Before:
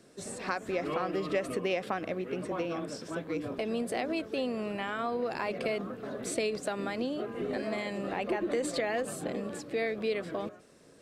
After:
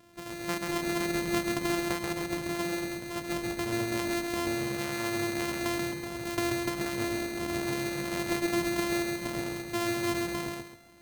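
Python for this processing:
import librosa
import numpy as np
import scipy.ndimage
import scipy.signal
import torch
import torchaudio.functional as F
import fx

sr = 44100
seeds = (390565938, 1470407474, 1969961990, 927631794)

p1 = np.r_[np.sort(x[:len(x) // 128 * 128].reshape(-1, 128), axis=1).ravel(), x[len(x) // 128 * 128:]]
y = p1 + fx.echo_feedback(p1, sr, ms=134, feedback_pct=32, wet_db=-3, dry=0)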